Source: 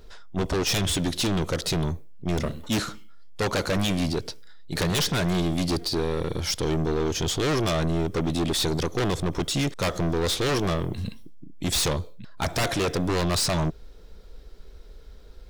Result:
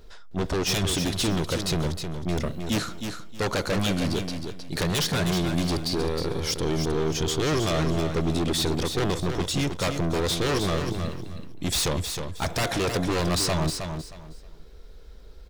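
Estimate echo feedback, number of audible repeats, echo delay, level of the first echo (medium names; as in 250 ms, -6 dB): 24%, 3, 314 ms, -7.0 dB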